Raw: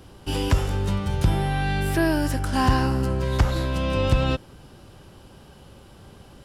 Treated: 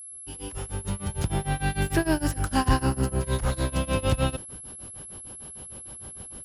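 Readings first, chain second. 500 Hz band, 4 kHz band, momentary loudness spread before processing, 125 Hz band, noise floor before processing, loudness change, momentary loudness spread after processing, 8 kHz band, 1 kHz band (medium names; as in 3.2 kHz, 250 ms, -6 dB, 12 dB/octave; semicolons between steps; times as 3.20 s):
-3.5 dB, -4.0 dB, 4 LU, -4.5 dB, -49 dBFS, -4.0 dB, 14 LU, +6.0 dB, -3.5 dB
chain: fade-in on the opening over 1.78 s; tremolo 6.6 Hz, depth 95%; whistle 11 kHz -42 dBFS; in parallel at -9 dB: overload inside the chain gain 27.5 dB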